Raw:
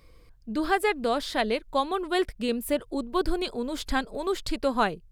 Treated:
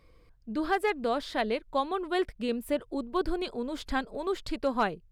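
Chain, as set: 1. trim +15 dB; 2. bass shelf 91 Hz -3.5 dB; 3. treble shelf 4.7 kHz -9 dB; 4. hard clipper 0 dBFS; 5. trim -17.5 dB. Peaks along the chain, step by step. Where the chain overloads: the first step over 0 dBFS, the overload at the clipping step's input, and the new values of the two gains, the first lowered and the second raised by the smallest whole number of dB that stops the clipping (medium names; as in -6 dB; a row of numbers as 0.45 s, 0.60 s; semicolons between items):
+4.0 dBFS, +4.0 dBFS, +3.5 dBFS, 0.0 dBFS, -17.5 dBFS; step 1, 3.5 dB; step 1 +11 dB, step 5 -13.5 dB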